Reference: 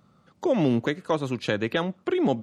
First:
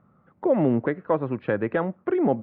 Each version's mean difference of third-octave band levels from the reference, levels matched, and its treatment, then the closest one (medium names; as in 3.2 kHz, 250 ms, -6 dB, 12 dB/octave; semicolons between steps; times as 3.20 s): 4.5 dB: low-pass 1.9 kHz 24 dB/octave; dynamic bell 570 Hz, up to +3 dB, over -33 dBFS, Q 1.1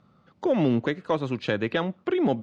1.5 dB: in parallel at -11.5 dB: one-sided clip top -18.5 dBFS; on the sum: low-pass 4.3 kHz 12 dB/octave; trim -2 dB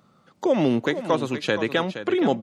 3.5 dB: bass shelf 120 Hz -12 dB; on a send: delay 470 ms -11 dB; on the sum: trim +3.5 dB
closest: second